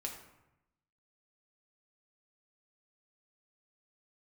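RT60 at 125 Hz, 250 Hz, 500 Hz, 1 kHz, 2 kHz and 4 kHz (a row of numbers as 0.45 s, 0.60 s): 1.1 s, 1.0 s, 0.85 s, 0.90 s, 0.80 s, 0.55 s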